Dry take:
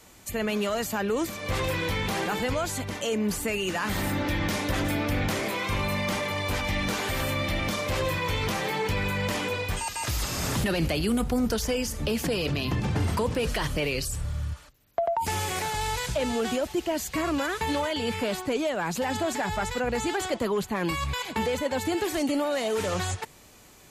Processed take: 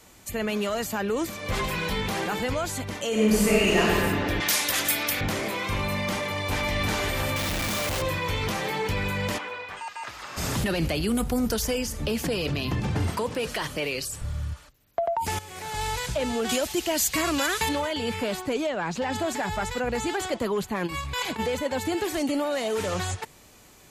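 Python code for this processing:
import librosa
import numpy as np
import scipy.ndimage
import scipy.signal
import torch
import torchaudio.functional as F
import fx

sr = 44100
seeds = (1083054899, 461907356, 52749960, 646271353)

y = fx.comb(x, sr, ms=4.8, depth=0.65, at=(1.52, 2.02))
y = fx.reverb_throw(y, sr, start_s=3.09, length_s=0.72, rt60_s=2.6, drr_db=-7.5)
y = fx.tilt_eq(y, sr, slope=4.5, at=(4.4, 5.21))
y = fx.echo_throw(y, sr, start_s=6.16, length_s=0.59, ms=350, feedback_pct=50, wet_db=-2.5)
y = fx.clip_1bit(y, sr, at=(7.36, 8.02))
y = fx.bandpass_q(y, sr, hz=1300.0, q=1.0, at=(9.37, 10.36), fade=0.02)
y = fx.high_shelf(y, sr, hz=8600.0, db=8.5, at=(11.15, 11.79))
y = fx.highpass(y, sr, hz=260.0, slope=6, at=(13.1, 14.22))
y = fx.high_shelf(y, sr, hz=2200.0, db=11.5, at=(16.49, 17.69))
y = fx.lowpass(y, sr, hz=5700.0, slope=12, at=(18.66, 19.11), fade=0.02)
y = fx.over_compress(y, sr, threshold_db=-32.0, ratio=-0.5, at=(20.86, 21.38), fade=0.02)
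y = fx.edit(y, sr, fx.fade_in_from(start_s=15.39, length_s=0.41, curve='qua', floor_db=-14.0), tone=tone)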